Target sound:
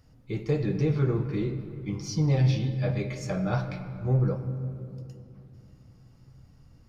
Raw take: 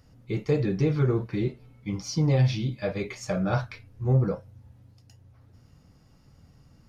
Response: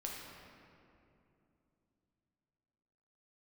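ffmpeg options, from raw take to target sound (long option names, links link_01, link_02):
-filter_complex "[0:a]asplit=2[link_01][link_02];[1:a]atrim=start_sample=2205,lowshelf=frequency=110:gain=8[link_03];[link_02][link_03]afir=irnorm=-1:irlink=0,volume=-3dB[link_04];[link_01][link_04]amix=inputs=2:normalize=0,volume=-6dB"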